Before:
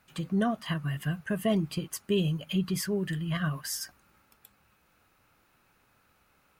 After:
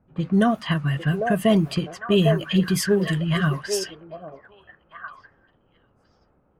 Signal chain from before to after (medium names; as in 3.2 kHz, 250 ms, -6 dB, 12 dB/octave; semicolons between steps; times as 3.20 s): repeats whose band climbs or falls 800 ms, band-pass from 550 Hz, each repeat 1.4 oct, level -0.5 dB; level-controlled noise filter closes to 470 Hz, open at -26 dBFS; trim +8.5 dB